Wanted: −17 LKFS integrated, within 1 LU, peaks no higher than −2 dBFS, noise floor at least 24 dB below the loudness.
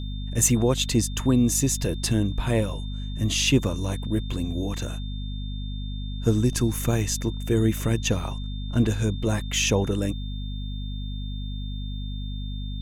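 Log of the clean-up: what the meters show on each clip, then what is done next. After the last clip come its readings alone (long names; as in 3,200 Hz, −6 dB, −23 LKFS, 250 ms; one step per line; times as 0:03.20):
mains hum 50 Hz; hum harmonics up to 250 Hz; level of the hum −29 dBFS; interfering tone 3,600 Hz; level of the tone −43 dBFS; integrated loudness −26.0 LKFS; sample peak −7.5 dBFS; target loudness −17.0 LKFS
→ hum removal 50 Hz, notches 5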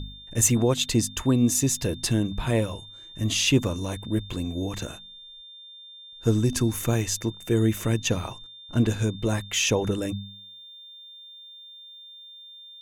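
mains hum none found; interfering tone 3,600 Hz; level of the tone −43 dBFS
→ notch filter 3,600 Hz, Q 30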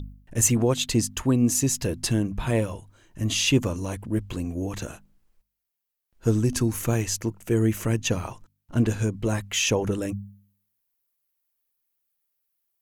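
interfering tone none found; integrated loudness −25.0 LKFS; sample peak −8.0 dBFS; target loudness −17.0 LKFS
→ level +8 dB
brickwall limiter −2 dBFS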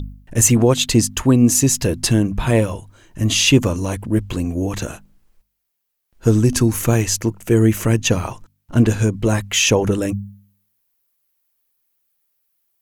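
integrated loudness −17.0 LKFS; sample peak −2.0 dBFS; background noise floor −73 dBFS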